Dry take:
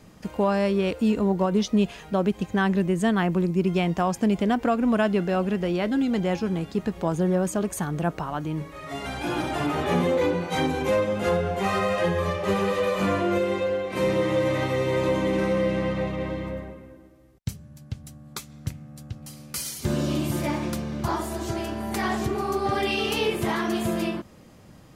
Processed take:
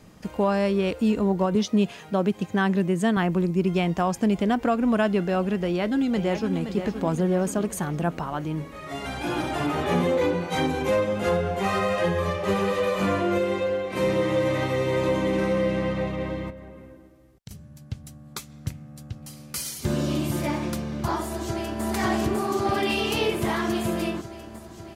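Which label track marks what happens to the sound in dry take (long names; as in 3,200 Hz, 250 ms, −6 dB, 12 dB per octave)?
1.550000	3.170000	high-pass filter 86 Hz 24 dB per octave
5.640000	6.630000	delay throw 520 ms, feedback 60%, level −9 dB
16.500000	17.510000	downward compressor, threshold −38 dBFS
21.240000	21.830000	delay throw 550 ms, feedback 75%, level −0.5 dB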